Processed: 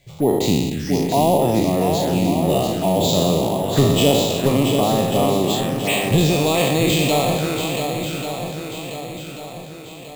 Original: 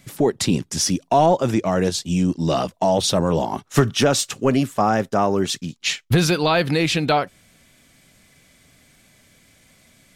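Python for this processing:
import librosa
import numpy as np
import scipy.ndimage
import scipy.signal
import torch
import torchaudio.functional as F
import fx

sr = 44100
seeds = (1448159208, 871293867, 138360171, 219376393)

p1 = fx.spec_trails(x, sr, decay_s=1.52)
p2 = scipy.signal.sosfilt(scipy.signal.butter(4, 4500.0, 'lowpass', fs=sr, output='sos'), p1)
p3 = fx.env_phaser(p2, sr, low_hz=220.0, high_hz=1500.0, full_db=-14.5)
p4 = p3 + fx.echo_swing(p3, sr, ms=1139, ratio=1.5, feedback_pct=44, wet_db=-6, dry=0)
p5 = np.repeat(p4[::4], 4)[:len(p4)]
y = F.gain(torch.from_numpy(p5), -1.0).numpy()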